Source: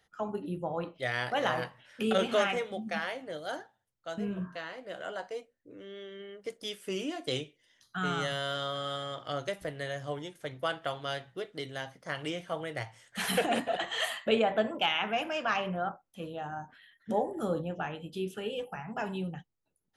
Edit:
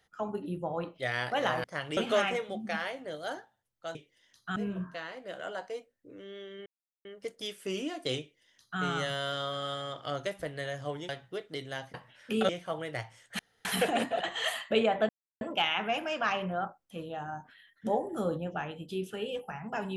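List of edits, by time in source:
1.64–2.19 swap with 11.98–12.31
6.27 insert silence 0.39 s
7.42–8.03 copy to 4.17
10.31–11.13 cut
13.21 insert room tone 0.26 s
14.65 insert silence 0.32 s

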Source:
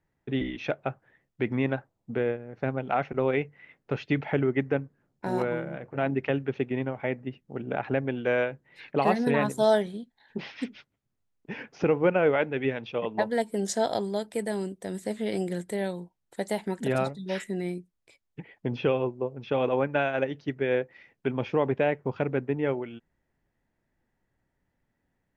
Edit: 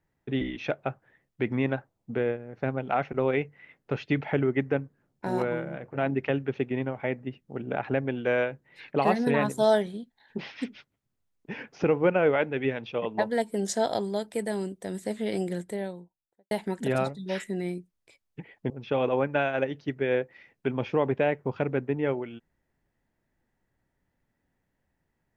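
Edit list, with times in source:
15.43–16.51 studio fade out
18.7–19.3 cut

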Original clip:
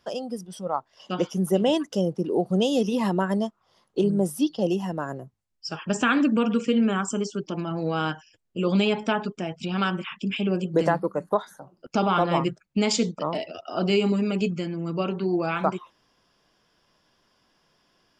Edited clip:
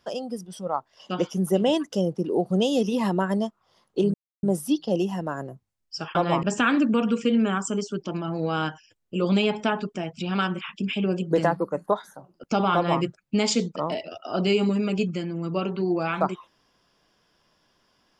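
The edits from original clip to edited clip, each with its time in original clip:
4.14 insert silence 0.29 s
12.17–12.45 copy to 5.86

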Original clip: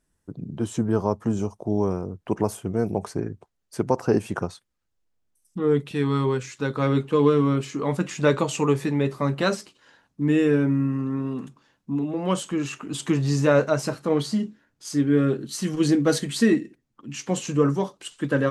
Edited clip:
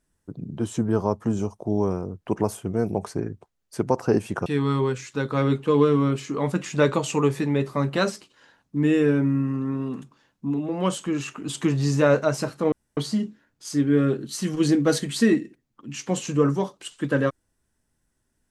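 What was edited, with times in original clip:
4.46–5.91 cut
14.17 insert room tone 0.25 s

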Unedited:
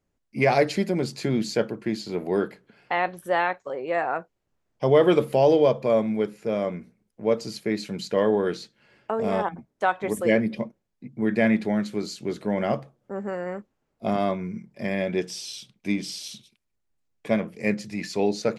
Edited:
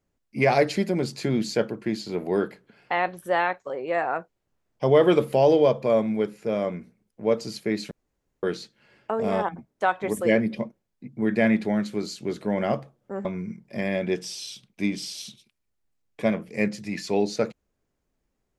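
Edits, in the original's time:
7.91–8.43 room tone
13.25–14.31 cut

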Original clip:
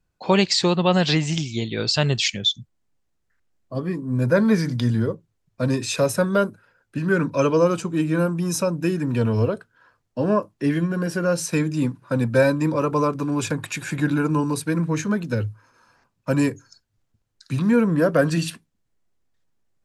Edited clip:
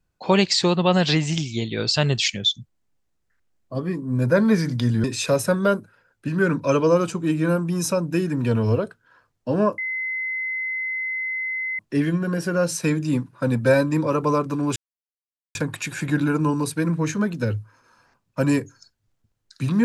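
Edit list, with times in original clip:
5.04–5.74 cut
10.48 add tone 2050 Hz -24 dBFS 2.01 s
13.45 insert silence 0.79 s

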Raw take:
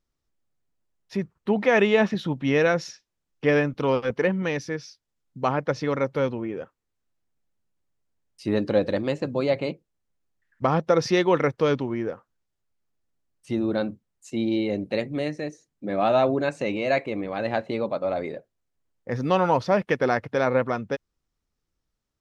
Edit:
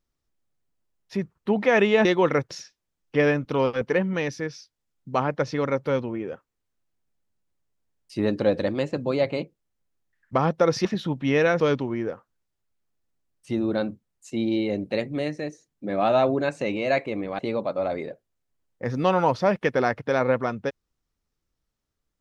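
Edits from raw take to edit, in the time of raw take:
2.05–2.8 swap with 11.14–11.6
17.39–17.65 cut

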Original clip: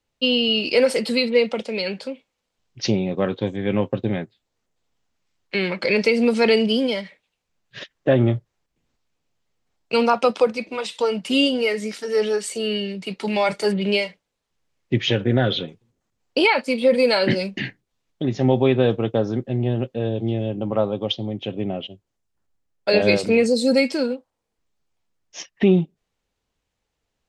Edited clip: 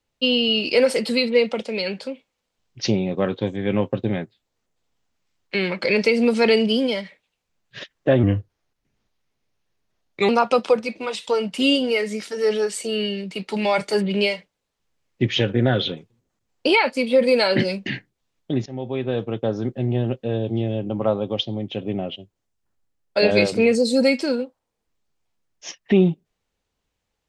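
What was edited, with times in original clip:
8.23–10 speed 86%
18.37–19.51 fade in, from -18 dB

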